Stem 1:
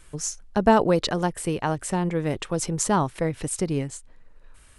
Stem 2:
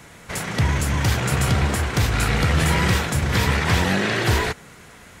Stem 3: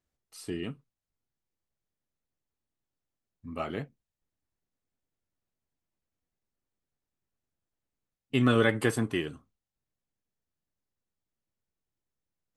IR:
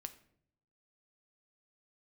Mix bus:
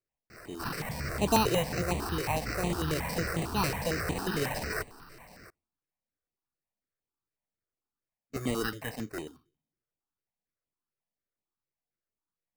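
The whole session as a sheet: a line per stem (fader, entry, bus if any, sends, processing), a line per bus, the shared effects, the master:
−3.0 dB, 0.65 s, no send, Butterworth low-pass 1,200 Hz
−6.0 dB, 0.30 s, send −17 dB, high-shelf EQ 4,700 Hz +8.5 dB; brickwall limiter −15 dBFS, peak gain reduction 9 dB
−4.5 dB, 0.00 s, send −12.5 dB, no processing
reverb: on, RT60 0.65 s, pre-delay 6 ms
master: low-shelf EQ 190 Hz −7.5 dB; decimation without filtering 13×; step-sequenced phaser 11 Hz 230–5,200 Hz

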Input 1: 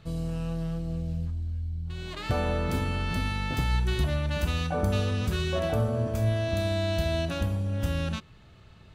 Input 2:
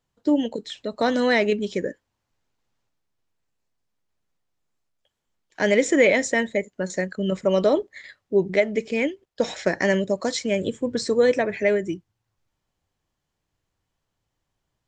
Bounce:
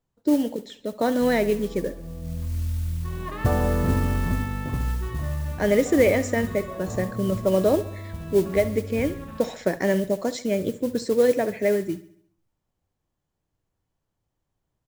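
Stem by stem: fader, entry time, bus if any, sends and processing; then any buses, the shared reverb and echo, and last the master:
0.0 dB, 1.15 s, no send, echo send −13.5 dB, low-pass filter 2,700 Hz; hollow resonant body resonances 1,100/1,800 Hz, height 13 dB; automatic ducking −14 dB, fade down 1.45 s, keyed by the second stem
−6.0 dB, 0.00 s, no send, echo send −16.5 dB, high-shelf EQ 6,200 Hz +10.5 dB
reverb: not used
echo: repeating echo 69 ms, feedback 50%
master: tilt shelving filter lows +6.5 dB, about 1,500 Hz; noise that follows the level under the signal 22 dB

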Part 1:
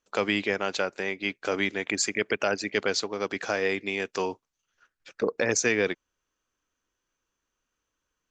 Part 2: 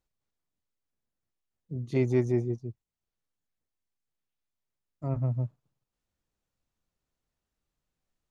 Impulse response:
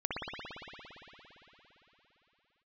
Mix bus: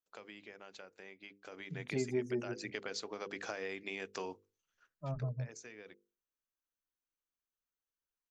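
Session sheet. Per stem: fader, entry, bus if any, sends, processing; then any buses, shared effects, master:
0:01.41 −19 dB → 0:01.99 −8 dB → 0:04.92 −8 dB → 0:05.41 −19.5 dB, 0.00 s, no send, downward compressor, threshold −28 dBFS, peak gain reduction 9 dB
−1.0 dB, 0.00 s, no send, spectral dynamics exaggerated over time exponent 2; comb filter 4.9 ms, depth 73%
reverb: not used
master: mains-hum notches 50/100/150/200/250/300/350/400/450/500 Hz; downward compressor 2.5 to 1, threshold −35 dBFS, peak gain reduction 10 dB

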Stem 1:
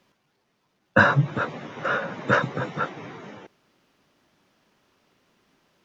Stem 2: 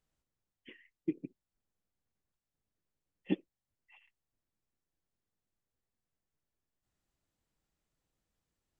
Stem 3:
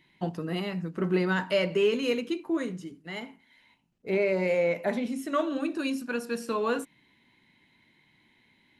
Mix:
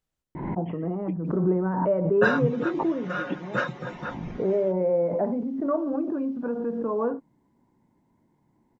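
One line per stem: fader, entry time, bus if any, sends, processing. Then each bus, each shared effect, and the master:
−9.5 dB, 1.25 s, no send, comb filter 5.6 ms, depth 96%
0.0 dB, 0.00 s, no send, no processing
+2.0 dB, 0.35 s, no send, low-pass filter 1,000 Hz 24 dB per octave; background raised ahead of every attack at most 43 dB per second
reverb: not used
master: no processing

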